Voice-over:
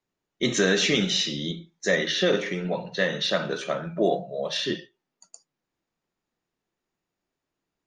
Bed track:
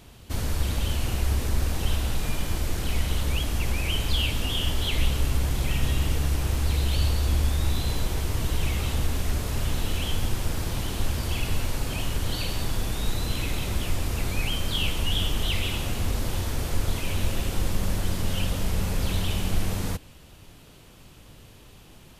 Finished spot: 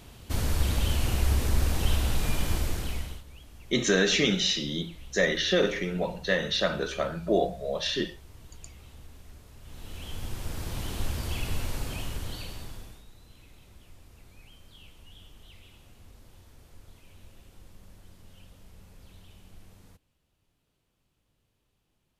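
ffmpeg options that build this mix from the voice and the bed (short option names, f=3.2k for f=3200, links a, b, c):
-filter_complex "[0:a]adelay=3300,volume=-1.5dB[a];[1:a]volume=18.5dB,afade=t=out:st=2.53:d=0.7:silence=0.0707946,afade=t=in:st=9.62:d=1.29:silence=0.11885,afade=t=out:st=11.78:d=1.27:silence=0.0841395[b];[a][b]amix=inputs=2:normalize=0"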